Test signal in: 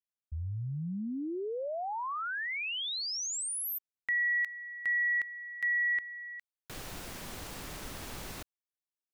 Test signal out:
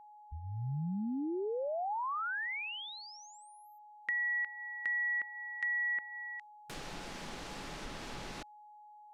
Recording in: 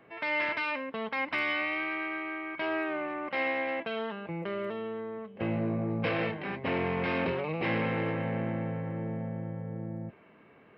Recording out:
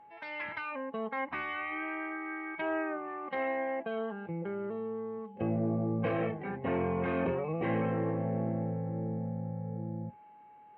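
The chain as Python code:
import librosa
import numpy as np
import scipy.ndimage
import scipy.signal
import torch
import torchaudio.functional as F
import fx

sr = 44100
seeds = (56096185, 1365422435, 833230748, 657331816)

y = fx.noise_reduce_blind(x, sr, reduce_db=11)
y = fx.env_lowpass_down(y, sr, base_hz=1700.0, full_db=-32.5)
y = y + 10.0 ** (-53.0 / 20.0) * np.sin(2.0 * np.pi * 840.0 * np.arange(len(y)) / sr)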